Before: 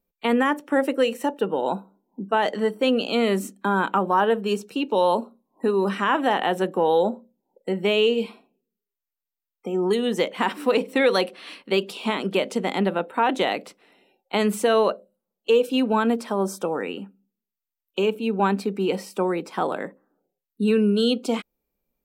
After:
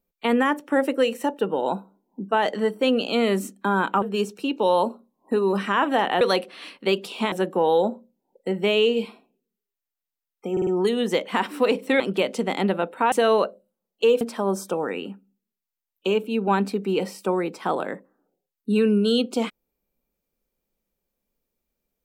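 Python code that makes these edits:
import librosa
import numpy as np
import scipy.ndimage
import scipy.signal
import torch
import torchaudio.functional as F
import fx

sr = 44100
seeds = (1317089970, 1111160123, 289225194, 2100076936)

y = fx.edit(x, sr, fx.cut(start_s=4.02, length_s=0.32),
    fx.stutter(start_s=9.73, slice_s=0.05, count=4),
    fx.move(start_s=11.06, length_s=1.11, to_s=6.53),
    fx.cut(start_s=13.29, length_s=1.29),
    fx.cut(start_s=15.67, length_s=0.46), tone=tone)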